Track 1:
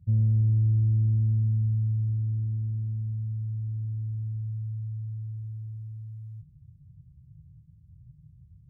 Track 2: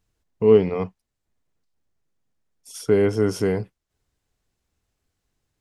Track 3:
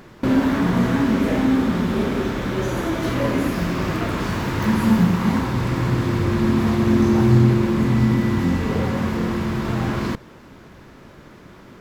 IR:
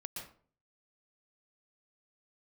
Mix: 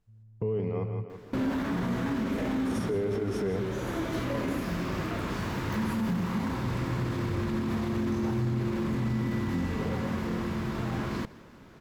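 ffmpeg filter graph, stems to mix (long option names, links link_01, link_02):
-filter_complex "[0:a]volume=-8dB[link_01];[1:a]highshelf=frequency=2200:gain=-9.5,alimiter=limit=-12.5dB:level=0:latency=1,volume=-2.5dB,asplit=4[link_02][link_03][link_04][link_05];[link_03]volume=-9dB[link_06];[link_04]volume=-10dB[link_07];[2:a]adelay=1100,volume=-8.5dB,asplit=2[link_08][link_09];[link_09]volume=-21dB[link_10];[link_05]apad=whole_len=383490[link_11];[link_01][link_11]sidechaingate=range=-24dB:threshold=-50dB:ratio=16:detection=peak[link_12];[link_02][link_08]amix=inputs=2:normalize=0,alimiter=limit=-21.5dB:level=0:latency=1:release=19,volume=0dB[link_13];[3:a]atrim=start_sample=2205[link_14];[link_06][link_14]afir=irnorm=-1:irlink=0[link_15];[link_07][link_10]amix=inputs=2:normalize=0,aecho=0:1:165|330|495|660|825|990:1|0.46|0.212|0.0973|0.0448|0.0206[link_16];[link_12][link_13][link_15][link_16]amix=inputs=4:normalize=0,alimiter=limit=-21.5dB:level=0:latency=1:release=320"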